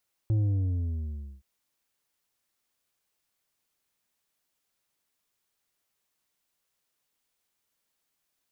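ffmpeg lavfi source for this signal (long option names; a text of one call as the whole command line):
ffmpeg -f lavfi -i "aevalsrc='0.075*clip((1.12-t)/1.08,0,1)*tanh(2.11*sin(2*PI*110*1.12/log(65/110)*(exp(log(65/110)*t/1.12)-1)))/tanh(2.11)':duration=1.12:sample_rate=44100" out.wav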